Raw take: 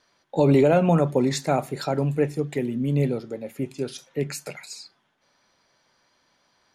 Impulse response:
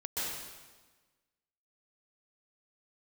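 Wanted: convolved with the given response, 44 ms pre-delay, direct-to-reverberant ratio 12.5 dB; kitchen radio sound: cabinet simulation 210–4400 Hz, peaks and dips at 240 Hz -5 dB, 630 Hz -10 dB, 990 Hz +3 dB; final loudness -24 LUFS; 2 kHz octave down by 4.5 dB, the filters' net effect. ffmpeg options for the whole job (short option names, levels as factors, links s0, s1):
-filter_complex "[0:a]equalizer=f=2000:t=o:g=-6,asplit=2[s0][s1];[1:a]atrim=start_sample=2205,adelay=44[s2];[s1][s2]afir=irnorm=-1:irlink=0,volume=0.133[s3];[s0][s3]amix=inputs=2:normalize=0,highpass=210,equalizer=f=240:t=q:w=4:g=-5,equalizer=f=630:t=q:w=4:g=-10,equalizer=f=990:t=q:w=4:g=3,lowpass=f=4400:w=0.5412,lowpass=f=4400:w=1.3066,volume=1.5"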